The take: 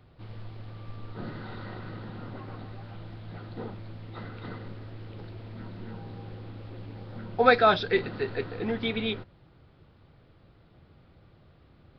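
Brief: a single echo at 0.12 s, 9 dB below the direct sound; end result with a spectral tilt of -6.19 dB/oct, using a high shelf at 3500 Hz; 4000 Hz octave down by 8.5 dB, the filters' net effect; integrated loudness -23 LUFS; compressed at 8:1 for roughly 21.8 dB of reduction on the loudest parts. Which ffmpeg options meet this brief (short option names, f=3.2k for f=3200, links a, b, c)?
-af "highshelf=f=3.5k:g=-5.5,equalizer=f=4k:t=o:g=-6.5,acompressor=threshold=-37dB:ratio=8,aecho=1:1:120:0.355,volume=19dB"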